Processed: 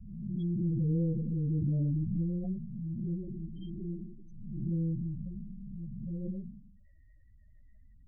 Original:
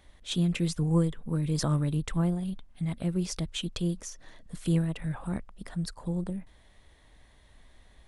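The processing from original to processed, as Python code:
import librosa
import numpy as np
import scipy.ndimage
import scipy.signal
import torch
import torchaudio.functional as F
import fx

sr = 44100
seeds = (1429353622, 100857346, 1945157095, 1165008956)

y = fx.spec_blur(x, sr, span_ms=380.0)
y = fx.high_shelf(y, sr, hz=8900.0, db=5.5)
y = fx.hum_notches(y, sr, base_hz=60, count=6)
y = fx.dispersion(y, sr, late='highs', ms=78.0, hz=410.0)
y = fx.spec_topn(y, sr, count=8)
y = fx.pre_swell(y, sr, db_per_s=40.0)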